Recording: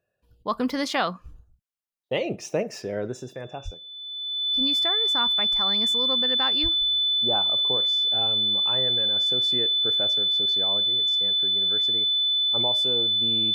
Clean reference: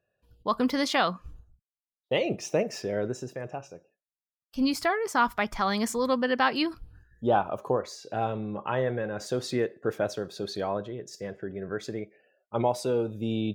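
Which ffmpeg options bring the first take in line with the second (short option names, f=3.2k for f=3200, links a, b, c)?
-filter_complex "[0:a]bandreject=f=3.5k:w=30,asplit=3[a][b][c];[a]afade=t=out:st=3.64:d=0.02[d];[b]highpass=f=140:w=0.5412,highpass=f=140:w=1.3066,afade=t=in:st=3.64:d=0.02,afade=t=out:st=3.76:d=0.02[e];[c]afade=t=in:st=3.76:d=0.02[f];[d][e][f]amix=inputs=3:normalize=0,asplit=3[g][h][i];[g]afade=t=out:st=6.62:d=0.02[j];[h]highpass=f=140:w=0.5412,highpass=f=140:w=1.3066,afade=t=in:st=6.62:d=0.02,afade=t=out:st=6.74:d=0.02[k];[i]afade=t=in:st=6.74:d=0.02[l];[j][k][l]amix=inputs=3:normalize=0,asetnsamples=n=441:p=0,asendcmd='3.74 volume volume 6dB',volume=0dB"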